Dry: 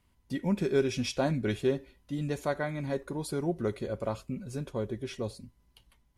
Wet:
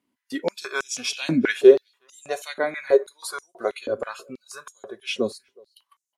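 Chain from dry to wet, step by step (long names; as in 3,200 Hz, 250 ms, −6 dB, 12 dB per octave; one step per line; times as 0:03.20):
noise reduction from a noise print of the clip's start 14 dB
slap from a distant wall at 63 metres, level −30 dB
high-pass on a step sequencer 6.2 Hz 270–6,900 Hz
level +8 dB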